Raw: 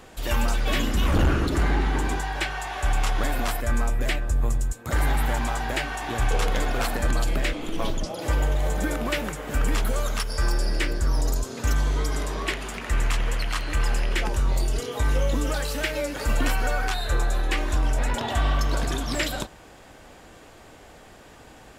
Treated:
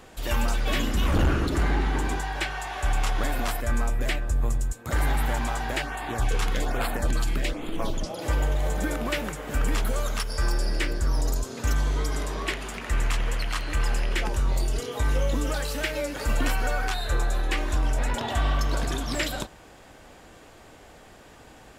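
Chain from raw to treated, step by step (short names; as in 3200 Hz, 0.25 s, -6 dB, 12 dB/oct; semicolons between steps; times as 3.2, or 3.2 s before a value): 5.82–7.93 LFO notch sine 1.2 Hz 520–6100 Hz; gain -1.5 dB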